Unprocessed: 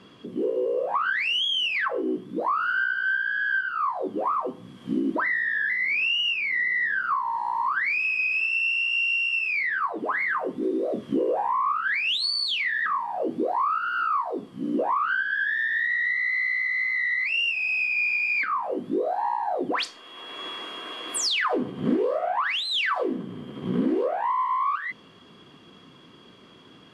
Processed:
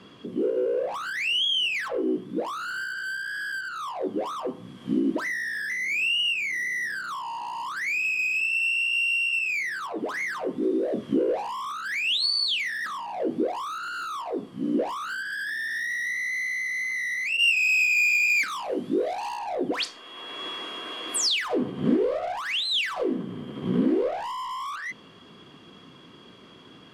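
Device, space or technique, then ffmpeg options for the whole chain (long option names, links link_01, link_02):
one-band saturation: -filter_complex "[0:a]acrossover=split=580|2400[link_01][link_02][link_03];[link_02]asoftclip=type=tanh:threshold=-37dB[link_04];[link_01][link_04][link_03]amix=inputs=3:normalize=0,asettb=1/sr,asplit=3[link_05][link_06][link_07];[link_05]atrim=end=17.374[link_08];[link_06]atrim=start=17.37:end=19.39,asetpts=PTS-STARTPTS,afade=type=in:duration=0.004:curve=qsin,afade=type=out:start_time=2.016:duration=0.004:curve=qsin,adynamicequalizer=threshold=0.00794:dfrequency=2300:dqfactor=0.7:tfrequency=2300:tqfactor=0.7:attack=5:release=100:ratio=0.375:range=4:mode=boostabove:tftype=highshelf[link_09];[link_07]atrim=start=19.386[link_10];[link_08][link_09]acrossfade=duration=0.004:curve1=hsin:curve2=qsin[link_11];[link_11][link_10]acrossfade=duration=0.004:curve1=qsin:curve2=hsin,volume=1.5dB"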